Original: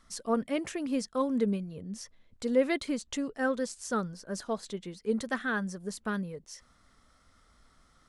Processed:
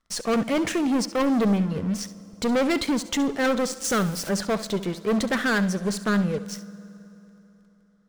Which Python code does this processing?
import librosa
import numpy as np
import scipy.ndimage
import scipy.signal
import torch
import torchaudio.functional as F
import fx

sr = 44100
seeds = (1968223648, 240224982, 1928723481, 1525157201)

y = fx.crossing_spikes(x, sr, level_db=-35.0, at=(3.84, 4.29))
y = fx.high_shelf(y, sr, hz=7800.0, db=-10.0)
y = fx.leveller(y, sr, passes=5)
y = fx.room_flutter(y, sr, wall_m=11.8, rt60_s=0.27)
y = fx.rev_fdn(y, sr, rt60_s=3.5, lf_ratio=1.0, hf_ratio=0.8, size_ms=30.0, drr_db=18.0)
y = F.gain(torch.from_numpy(y), -4.0).numpy()